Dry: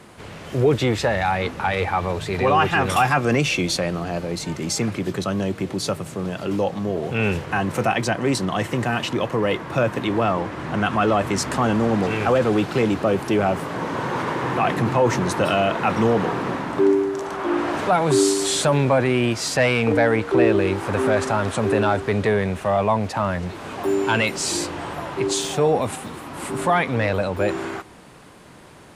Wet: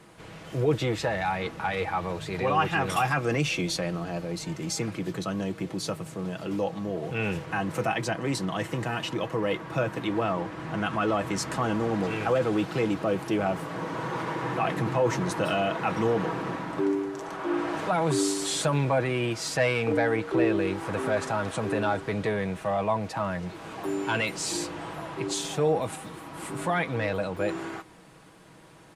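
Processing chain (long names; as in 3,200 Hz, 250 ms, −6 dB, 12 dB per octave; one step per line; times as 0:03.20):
comb filter 6.2 ms, depth 43%
level −7.5 dB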